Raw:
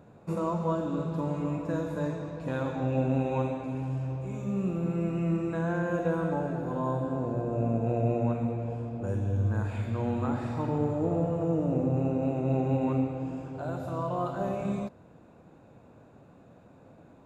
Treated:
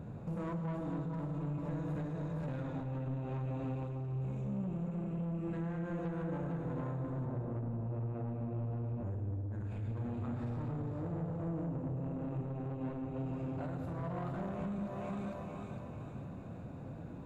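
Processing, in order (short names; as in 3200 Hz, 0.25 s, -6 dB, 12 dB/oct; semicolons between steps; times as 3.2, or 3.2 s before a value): tone controls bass +11 dB, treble -3 dB; thinning echo 0.453 s, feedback 47%, high-pass 470 Hz, level -5.5 dB; compressor 6:1, threshold -34 dBFS, peak gain reduction 19 dB; 7.25–9.53 high shelf 2700 Hz -9 dB; soft clip -36.5 dBFS, distortion -11 dB; reverb RT60 1.6 s, pre-delay 93 ms, DRR 10 dB; gain +2 dB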